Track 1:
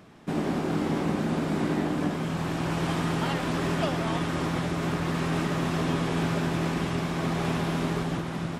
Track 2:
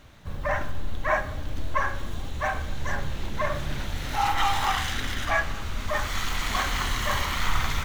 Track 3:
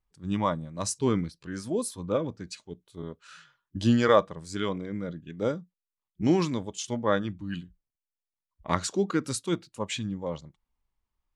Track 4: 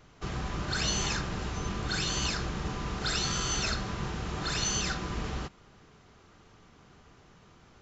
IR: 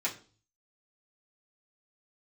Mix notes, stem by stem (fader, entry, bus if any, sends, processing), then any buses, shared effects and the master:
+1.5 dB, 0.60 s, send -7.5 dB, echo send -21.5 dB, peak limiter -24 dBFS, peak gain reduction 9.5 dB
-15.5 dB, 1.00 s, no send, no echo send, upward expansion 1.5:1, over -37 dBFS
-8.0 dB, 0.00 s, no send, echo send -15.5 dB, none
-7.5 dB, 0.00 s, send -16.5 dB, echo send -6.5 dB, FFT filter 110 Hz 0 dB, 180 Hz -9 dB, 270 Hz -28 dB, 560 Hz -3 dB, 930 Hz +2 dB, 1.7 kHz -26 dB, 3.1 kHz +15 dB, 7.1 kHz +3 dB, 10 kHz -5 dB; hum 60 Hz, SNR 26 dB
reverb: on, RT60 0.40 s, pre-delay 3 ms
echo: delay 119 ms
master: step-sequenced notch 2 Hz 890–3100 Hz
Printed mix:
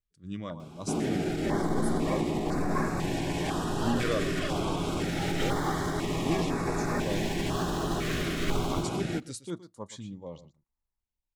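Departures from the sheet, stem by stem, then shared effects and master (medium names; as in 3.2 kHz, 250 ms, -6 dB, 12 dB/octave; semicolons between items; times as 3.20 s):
stem 2 -15.5 dB -> -6.0 dB; stem 4: muted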